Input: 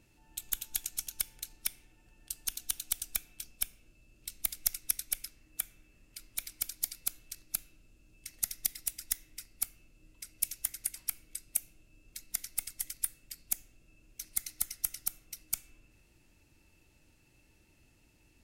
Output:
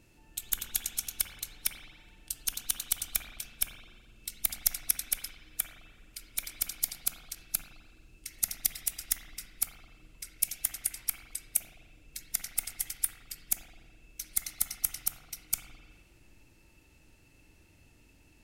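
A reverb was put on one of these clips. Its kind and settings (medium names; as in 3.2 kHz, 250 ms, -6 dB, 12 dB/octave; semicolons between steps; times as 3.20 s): spring tank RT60 1.4 s, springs 41/52 ms, chirp 65 ms, DRR 3 dB; trim +3 dB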